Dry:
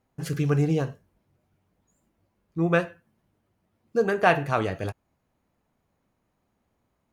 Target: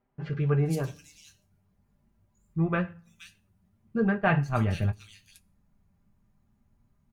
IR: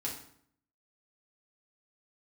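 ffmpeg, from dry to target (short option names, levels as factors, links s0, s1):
-filter_complex "[0:a]asplit=3[s0][s1][s2];[s0]afade=t=out:st=4.16:d=0.02[s3];[s1]agate=range=0.0224:threshold=0.0891:ratio=3:detection=peak,afade=t=in:st=4.16:d=0.02,afade=t=out:st=4.59:d=0.02[s4];[s2]afade=t=in:st=4.59:d=0.02[s5];[s3][s4][s5]amix=inputs=3:normalize=0,asubboost=boost=8.5:cutoff=150,asplit=2[s6][s7];[1:a]atrim=start_sample=2205,highshelf=f=6900:g=11.5[s8];[s7][s8]afir=irnorm=-1:irlink=0,volume=0.0668[s9];[s6][s9]amix=inputs=2:normalize=0,flanger=delay=8.1:depth=2.4:regen=-40:speed=0.44:shape=sinusoidal,aecho=1:1:5:0.41,acrossover=split=3200[s10][s11];[s11]adelay=470[s12];[s10][s12]amix=inputs=2:normalize=0"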